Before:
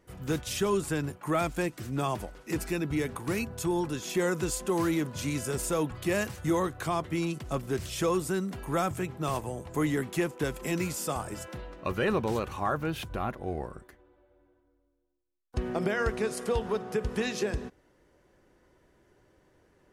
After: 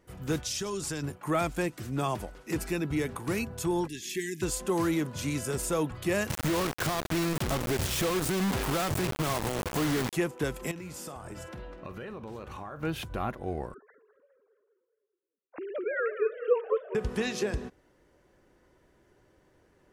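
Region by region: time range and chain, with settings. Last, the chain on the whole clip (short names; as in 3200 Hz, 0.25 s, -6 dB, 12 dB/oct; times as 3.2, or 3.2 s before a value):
0.44–1.03 bell 5500 Hz +12 dB 1.1 oct + compressor, threshold -30 dBFS
3.87–4.42 brick-wall FIR band-stop 430–1600 Hz + low shelf 410 Hz -9.5 dB
6.3–10.13 high shelf 2100 Hz -5.5 dB + compressor 20:1, threshold -32 dBFS + companded quantiser 2-bit
10.71–12.83 high shelf 4600 Hz -7 dB + compressor 10:1, threshold -37 dBFS + doubler 49 ms -12.5 dB
13.74–16.95 sine-wave speech + dynamic EQ 2600 Hz, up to -3 dB, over -46 dBFS, Q 0.82 + warbling echo 0.206 s, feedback 45%, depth 205 cents, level -12 dB
whole clip: dry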